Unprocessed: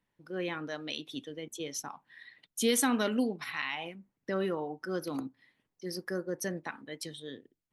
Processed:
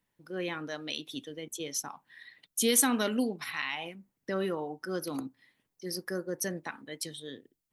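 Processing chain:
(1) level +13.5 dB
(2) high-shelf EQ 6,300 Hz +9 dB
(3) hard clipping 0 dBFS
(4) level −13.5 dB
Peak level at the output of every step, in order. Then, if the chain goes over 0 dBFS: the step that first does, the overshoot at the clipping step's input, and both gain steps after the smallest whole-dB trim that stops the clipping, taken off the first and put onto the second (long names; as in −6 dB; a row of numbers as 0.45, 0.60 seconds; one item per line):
−2.5, +3.5, 0.0, −13.5 dBFS
step 2, 3.5 dB
step 1 +9.5 dB, step 4 −9.5 dB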